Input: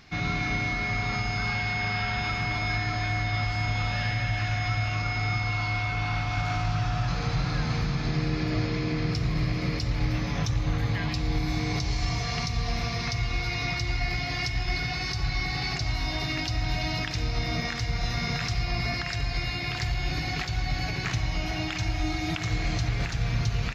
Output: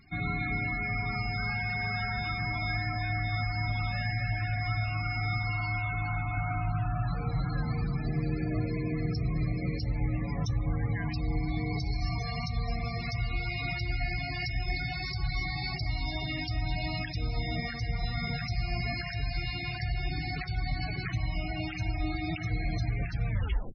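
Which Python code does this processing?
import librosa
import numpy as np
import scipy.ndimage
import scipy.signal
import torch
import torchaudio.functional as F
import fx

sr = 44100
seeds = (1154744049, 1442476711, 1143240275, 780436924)

y = fx.tape_stop_end(x, sr, length_s=0.44)
y = fx.spec_topn(y, sr, count=32)
y = y * 10.0 ** (-3.0 / 20.0)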